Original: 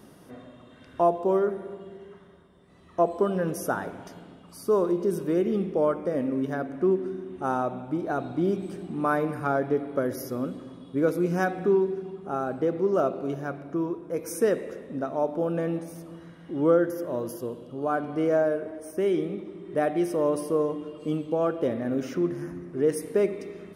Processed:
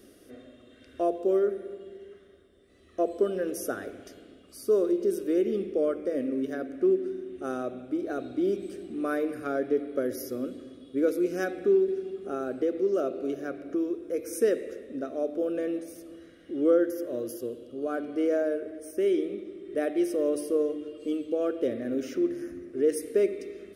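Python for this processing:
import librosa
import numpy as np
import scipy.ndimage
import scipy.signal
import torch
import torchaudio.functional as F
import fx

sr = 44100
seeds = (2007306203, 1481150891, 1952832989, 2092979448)

y = fx.fixed_phaser(x, sr, hz=380.0, stages=4)
y = fx.band_squash(y, sr, depth_pct=40, at=(11.88, 14.33))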